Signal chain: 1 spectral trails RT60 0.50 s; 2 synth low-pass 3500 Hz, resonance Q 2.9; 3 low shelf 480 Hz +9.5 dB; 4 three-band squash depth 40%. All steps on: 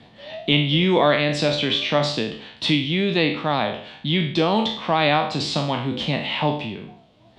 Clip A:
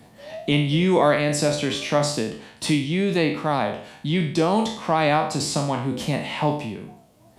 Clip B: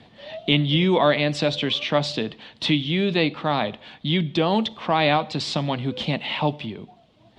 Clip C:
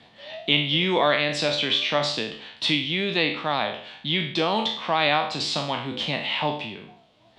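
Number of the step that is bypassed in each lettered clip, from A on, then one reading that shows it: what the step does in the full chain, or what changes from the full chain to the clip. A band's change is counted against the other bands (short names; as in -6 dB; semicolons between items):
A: 2, 8 kHz band +10.0 dB; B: 1, momentary loudness spread change +1 LU; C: 3, 125 Hz band -7.0 dB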